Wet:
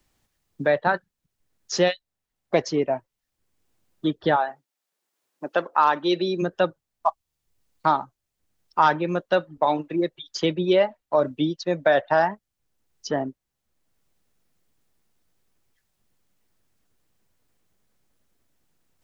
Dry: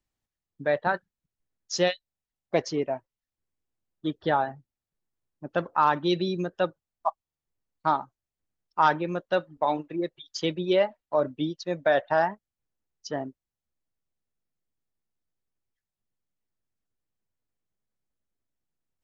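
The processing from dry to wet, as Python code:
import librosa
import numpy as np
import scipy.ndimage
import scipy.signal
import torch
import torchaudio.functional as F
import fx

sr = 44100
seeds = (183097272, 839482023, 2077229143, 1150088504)

y = fx.highpass(x, sr, hz=fx.line((4.35, 570.0), (6.41, 270.0)), slope=12, at=(4.35, 6.41), fade=0.02)
y = fx.band_squash(y, sr, depth_pct=40)
y = y * librosa.db_to_amplitude(4.5)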